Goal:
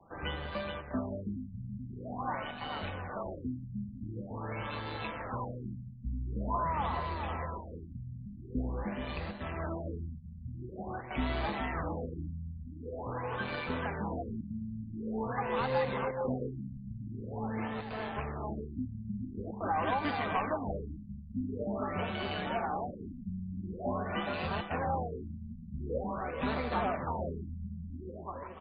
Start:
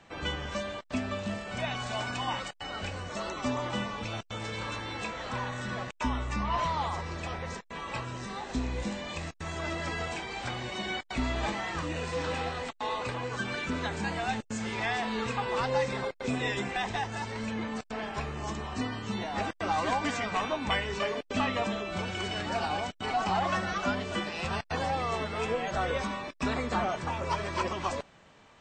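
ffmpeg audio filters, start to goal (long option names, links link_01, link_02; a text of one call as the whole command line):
ffmpeg -i in.wav -filter_complex "[0:a]acrossover=split=250|700|1700[link_01][link_02][link_03][link_04];[link_01]acrusher=samples=39:mix=1:aa=0.000001:lfo=1:lforange=62.4:lforate=0.68[link_05];[link_04]tremolo=f=150:d=0.824[link_06];[link_05][link_02][link_03][link_06]amix=inputs=4:normalize=0,aecho=1:1:427|854|1281|1708|2135:0.447|0.201|0.0905|0.0407|0.0183,afftfilt=real='re*lt(b*sr/1024,220*pow(4900/220,0.5+0.5*sin(2*PI*0.46*pts/sr)))':imag='im*lt(b*sr/1024,220*pow(4900/220,0.5+0.5*sin(2*PI*0.46*pts/sr)))':win_size=1024:overlap=0.75,volume=-2dB" out.wav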